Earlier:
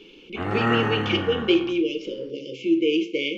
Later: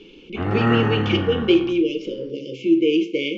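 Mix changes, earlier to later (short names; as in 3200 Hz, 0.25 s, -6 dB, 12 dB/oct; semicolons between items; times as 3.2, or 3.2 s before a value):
background: add air absorption 55 m; master: add low shelf 340 Hz +7.5 dB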